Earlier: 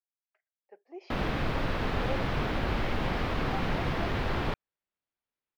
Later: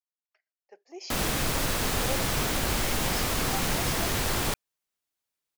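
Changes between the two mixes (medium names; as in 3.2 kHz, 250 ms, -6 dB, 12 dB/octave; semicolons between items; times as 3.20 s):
speech: add treble shelf 3.4 kHz +7 dB; master: remove distance through air 350 m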